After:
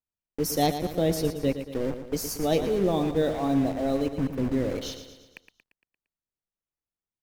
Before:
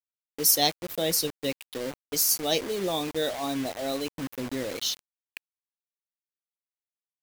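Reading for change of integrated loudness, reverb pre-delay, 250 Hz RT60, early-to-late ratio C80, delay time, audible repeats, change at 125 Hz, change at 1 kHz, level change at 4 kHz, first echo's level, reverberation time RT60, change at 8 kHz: 0.0 dB, no reverb audible, no reverb audible, no reverb audible, 115 ms, 5, +10.0 dB, +2.0 dB, −8.5 dB, −10.0 dB, no reverb audible, −10.0 dB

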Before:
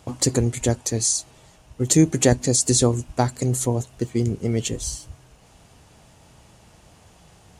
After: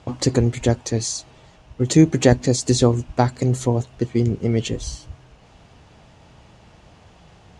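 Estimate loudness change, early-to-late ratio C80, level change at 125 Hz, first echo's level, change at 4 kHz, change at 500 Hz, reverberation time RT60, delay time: +1.5 dB, no reverb audible, +3.0 dB, no echo audible, 0.0 dB, +3.0 dB, no reverb audible, no echo audible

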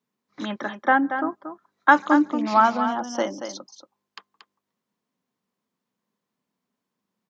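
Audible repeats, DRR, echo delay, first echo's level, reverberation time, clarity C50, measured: 1, no reverb audible, 231 ms, −9.0 dB, no reverb audible, no reverb audible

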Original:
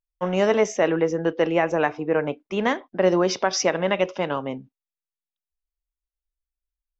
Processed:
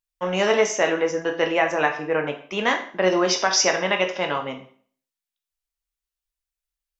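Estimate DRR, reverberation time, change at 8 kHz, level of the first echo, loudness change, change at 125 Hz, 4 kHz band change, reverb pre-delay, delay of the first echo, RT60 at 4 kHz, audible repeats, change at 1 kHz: 4.0 dB, 0.50 s, can't be measured, no echo audible, +1.0 dB, −4.5 dB, +6.5 dB, 13 ms, no echo audible, 0.45 s, no echo audible, +2.0 dB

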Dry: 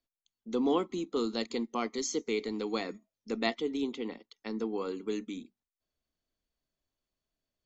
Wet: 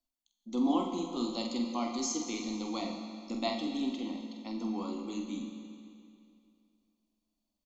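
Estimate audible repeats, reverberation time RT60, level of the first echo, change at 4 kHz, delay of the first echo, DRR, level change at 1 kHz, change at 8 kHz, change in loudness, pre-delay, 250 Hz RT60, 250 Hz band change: 1, 2.5 s, −6.0 dB, 0.0 dB, 46 ms, 1.0 dB, +0.5 dB, can't be measured, −1.0 dB, 14 ms, 2.5 s, +1.5 dB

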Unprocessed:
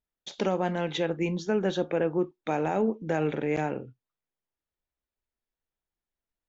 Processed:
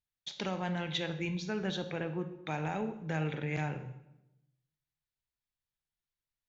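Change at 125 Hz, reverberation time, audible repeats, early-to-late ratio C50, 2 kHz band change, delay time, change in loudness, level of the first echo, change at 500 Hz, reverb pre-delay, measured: −1.5 dB, 0.90 s, no echo audible, 11.0 dB, −3.0 dB, no echo audible, −7.5 dB, no echo audible, −11.5 dB, 30 ms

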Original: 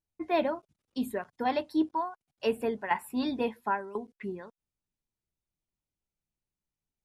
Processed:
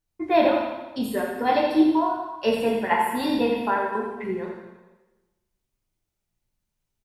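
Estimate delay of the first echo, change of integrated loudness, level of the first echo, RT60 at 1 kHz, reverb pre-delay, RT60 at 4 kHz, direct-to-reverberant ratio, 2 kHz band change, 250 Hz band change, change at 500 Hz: 84 ms, +8.5 dB, −6.0 dB, 1.1 s, 5 ms, 1.1 s, −2.5 dB, +8.5 dB, +9.0 dB, +9.0 dB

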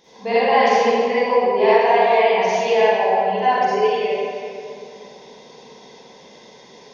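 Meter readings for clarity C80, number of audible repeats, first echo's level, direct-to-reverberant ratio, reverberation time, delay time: −4.0 dB, no echo audible, no echo audible, −12.0 dB, 2.7 s, no echo audible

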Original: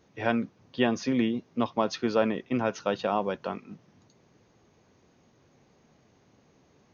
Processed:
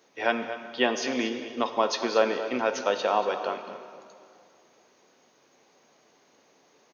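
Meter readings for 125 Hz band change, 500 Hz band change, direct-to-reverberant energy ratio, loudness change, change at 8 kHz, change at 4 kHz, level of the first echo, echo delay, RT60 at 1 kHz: below −10 dB, +2.5 dB, 6.5 dB, +1.5 dB, can't be measured, +6.0 dB, −13.0 dB, 232 ms, 2.3 s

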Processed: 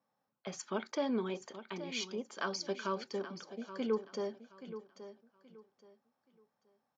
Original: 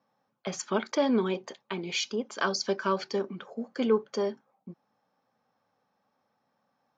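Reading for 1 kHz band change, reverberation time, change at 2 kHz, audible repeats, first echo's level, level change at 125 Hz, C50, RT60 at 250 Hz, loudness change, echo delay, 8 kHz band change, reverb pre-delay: −8.0 dB, no reverb audible, −8.5 dB, 2, −12.5 dB, −8.5 dB, no reverb audible, no reverb audible, −9.0 dB, 826 ms, can't be measured, no reverb audible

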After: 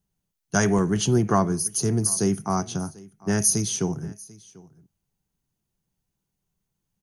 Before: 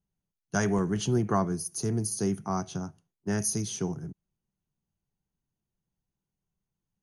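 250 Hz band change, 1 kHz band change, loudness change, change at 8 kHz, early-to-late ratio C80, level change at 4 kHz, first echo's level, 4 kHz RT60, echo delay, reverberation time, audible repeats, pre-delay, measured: +5.5 dB, +5.5 dB, +6.5 dB, +9.5 dB, no reverb audible, +8.0 dB, −22.5 dB, no reverb audible, 742 ms, no reverb audible, 1, no reverb audible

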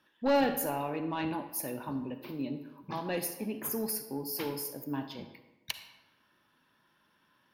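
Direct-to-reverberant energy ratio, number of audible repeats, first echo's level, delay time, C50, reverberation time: 8.5 dB, no echo audible, no echo audible, no echo audible, 9.0 dB, 1.1 s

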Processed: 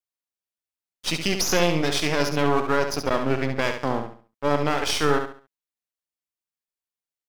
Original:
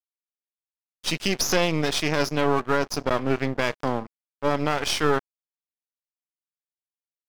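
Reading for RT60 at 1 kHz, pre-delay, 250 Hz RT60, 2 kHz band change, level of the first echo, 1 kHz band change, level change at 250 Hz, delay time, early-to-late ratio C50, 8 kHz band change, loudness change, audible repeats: no reverb audible, no reverb audible, no reverb audible, +1.0 dB, −7.0 dB, +1.0 dB, +1.0 dB, 69 ms, no reverb audible, +1.0 dB, +1.0 dB, 3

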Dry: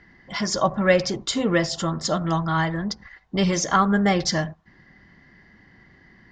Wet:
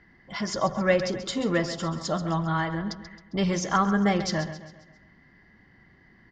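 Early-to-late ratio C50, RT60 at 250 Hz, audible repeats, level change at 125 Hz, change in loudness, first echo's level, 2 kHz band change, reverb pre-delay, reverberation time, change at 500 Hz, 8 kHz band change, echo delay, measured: no reverb audible, no reverb audible, 4, −3.5 dB, −4.0 dB, −12.0 dB, −4.5 dB, no reverb audible, no reverb audible, −3.5 dB, −7.5 dB, 134 ms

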